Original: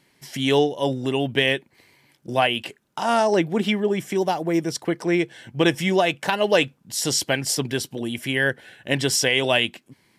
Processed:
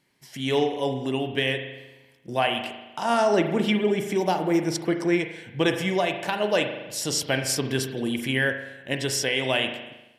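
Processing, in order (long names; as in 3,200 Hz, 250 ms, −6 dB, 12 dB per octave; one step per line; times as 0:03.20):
spring reverb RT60 1.1 s, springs 38 ms, chirp 50 ms, DRR 6 dB
automatic gain control gain up to 9 dB
level −8 dB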